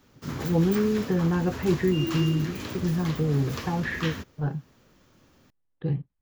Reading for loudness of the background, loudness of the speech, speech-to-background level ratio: -34.5 LUFS, -27.0 LUFS, 7.5 dB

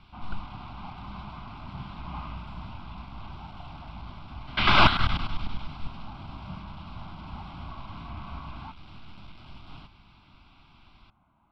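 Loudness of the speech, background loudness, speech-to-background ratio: -24.0 LUFS, -43.0 LUFS, 19.0 dB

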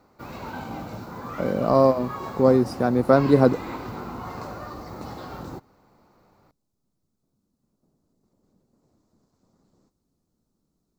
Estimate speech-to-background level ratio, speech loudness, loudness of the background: 15.5 dB, -20.5 LUFS, -36.0 LUFS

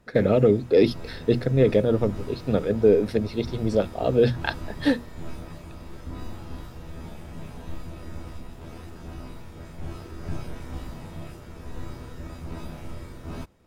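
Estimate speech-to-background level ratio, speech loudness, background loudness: 17.0 dB, -23.0 LUFS, -40.0 LUFS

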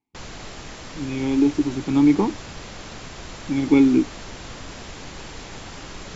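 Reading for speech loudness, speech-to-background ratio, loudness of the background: -20.0 LUFS, 17.5 dB, -37.5 LUFS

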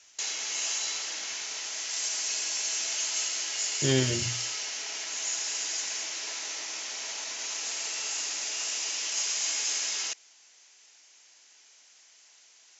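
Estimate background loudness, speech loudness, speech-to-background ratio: -30.0 LUFS, -29.0 LUFS, 1.0 dB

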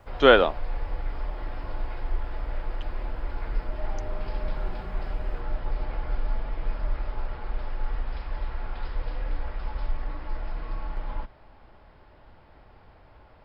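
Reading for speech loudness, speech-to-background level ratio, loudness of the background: -19.0 LUFS, 17.0 dB, -36.0 LUFS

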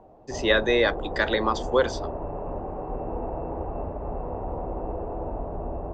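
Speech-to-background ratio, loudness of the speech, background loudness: 9.5 dB, -24.0 LUFS, -33.5 LUFS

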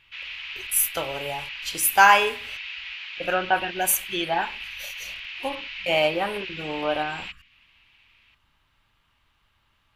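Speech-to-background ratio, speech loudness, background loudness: 10.5 dB, -23.5 LUFS, -34.0 LUFS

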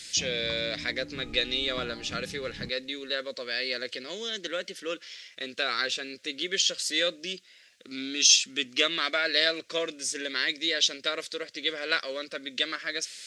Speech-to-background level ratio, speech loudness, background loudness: 16.0 dB, -28.0 LUFS, -44.0 LUFS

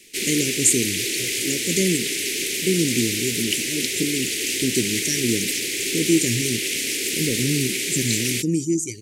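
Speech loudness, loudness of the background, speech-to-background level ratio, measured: -24.0 LUFS, -22.5 LUFS, -1.5 dB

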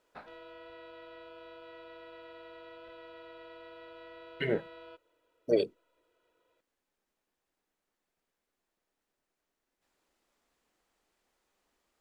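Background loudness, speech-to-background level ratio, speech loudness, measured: -50.5 LUFS, 18.0 dB, -32.5 LUFS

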